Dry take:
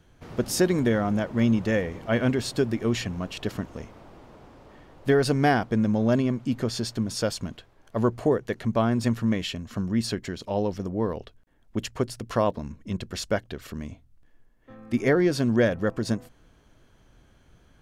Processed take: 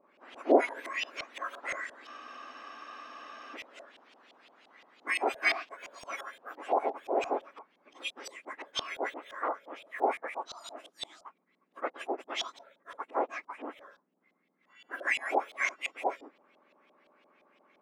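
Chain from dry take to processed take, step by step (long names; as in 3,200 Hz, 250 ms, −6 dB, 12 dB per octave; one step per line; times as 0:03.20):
frequency axis turned over on the octave scale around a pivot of 1,900 Hz
auto-filter low-pass saw up 5.8 Hz 640–3,400 Hz
frozen spectrum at 0:02.08, 1.47 s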